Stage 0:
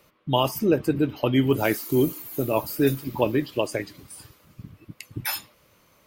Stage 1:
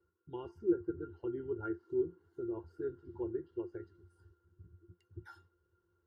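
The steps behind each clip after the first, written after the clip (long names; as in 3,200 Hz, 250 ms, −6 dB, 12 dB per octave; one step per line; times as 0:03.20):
phaser with its sweep stopped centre 710 Hz, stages 6
resonances in every octave F, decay 0.12 s
treble cut that deepens with the level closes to 1,900 Hz, closed at −33 dBFS
level −1.5 dB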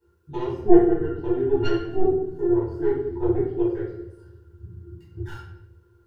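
stylus tracing distortion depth 0.25 ms
convolution reverb RT60 0.85 s, pre-delay 3 ms, DRR −9.5 dB
level +1 dB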